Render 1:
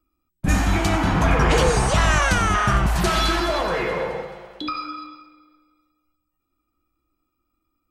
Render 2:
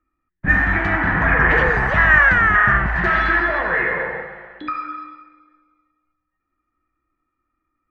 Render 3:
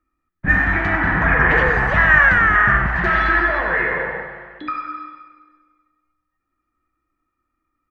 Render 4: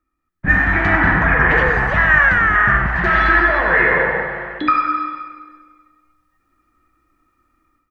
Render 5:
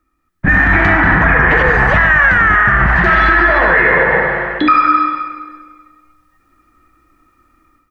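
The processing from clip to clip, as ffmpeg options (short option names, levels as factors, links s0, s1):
-af "lowpass=f=1800:t=q:w=9.1,volume=0.75"
-af "aecho=1:1:98|196|294|392|490|588:0.224|0.132|0.0779|0.046|0.0271|0.016"
-af "dynaudnorm=f=180:g=3:m=4.47,volume=0.891"
-af "alimiter=level_in=3.16:limit=0.891:release=50:level=0:latency=1,volume=0.891"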